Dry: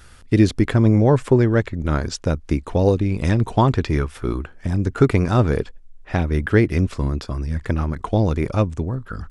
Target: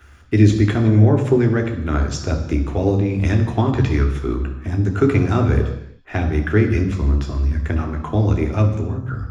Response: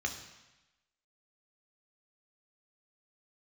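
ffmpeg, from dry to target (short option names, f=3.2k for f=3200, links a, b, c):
-filter_complex "[0:a]acrossover=split=400[a][b];[b]acompressor=threshold=-19dB:ratio=6[c];[a][c]amix=inputs=2:normalize=0,acrossover=split=2500[d][e];[e]aeval=exprs='sgn(val(0))*max(abs(val(0))-0.00106,0)':c=same[f];[d][f]amix=inputs=2:normalize=0[g];[1:a]atrim=start_sample=2205,afade=t=out:st=0.44:d=0.01,atrim=end_sample=19845[h];[g][h]afir=irnorm=-1:irlink=0,volume=-2.5dB"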